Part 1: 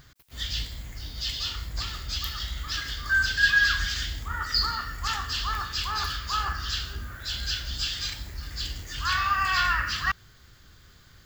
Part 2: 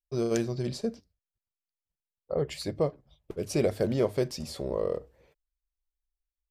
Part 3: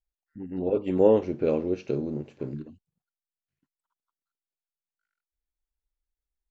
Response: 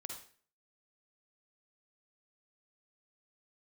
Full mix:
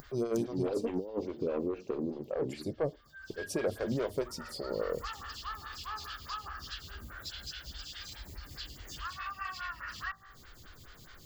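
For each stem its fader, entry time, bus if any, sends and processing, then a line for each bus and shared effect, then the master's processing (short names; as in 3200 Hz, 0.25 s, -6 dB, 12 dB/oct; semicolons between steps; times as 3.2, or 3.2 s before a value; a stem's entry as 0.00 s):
1.8 s -1 dB -> 2.38 s -8.5 dB -> 4.35 s -8.5 dB -> 5.04 s -1 dB, 0.00 s, no send, de-hum 55.46 Hz, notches 38; compressor 6:1, threshold -33 dBFS, peak gain reduction 15.5 dB; auto duck -21 dB, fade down 0.35 s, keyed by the third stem
-1.0 dB, 0.00 s, no send, dry
-3.5 dB, 0.00 s, no send, negative-ratio compressor -24 dBFS, ratio -0.5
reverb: off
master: upward compressor, threshold -39 dBFS; soft clip -22 dBFS, distortion -16 dB; photocell phaser 4.8 Hz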